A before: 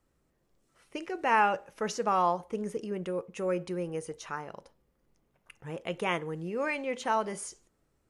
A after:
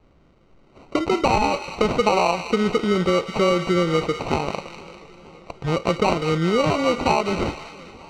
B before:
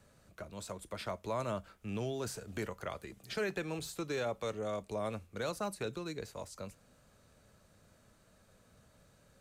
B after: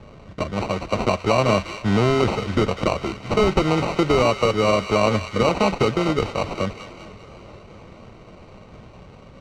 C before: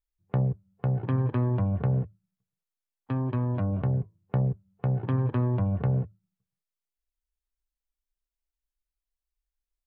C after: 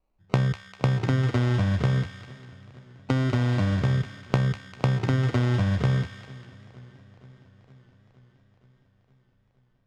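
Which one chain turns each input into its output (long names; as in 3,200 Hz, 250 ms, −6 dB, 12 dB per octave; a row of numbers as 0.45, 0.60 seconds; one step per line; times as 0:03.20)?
downward compressor 6 to 1, threshold −33 dBFS
sample-rate reduction 1,700 Hz, jitter 0%
high-frequency loss of the air 130 metres
delay with a high-pass on its return 198 ms, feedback 49%, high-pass 1,500 Hz, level −7.5 dB
feedback echo with a swinging delay time 467 ms, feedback 68%, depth 81 cents, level −23 dB
normalise the peak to −6 dBFS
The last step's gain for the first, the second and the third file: +18.0, +21.0, +12.5 decibels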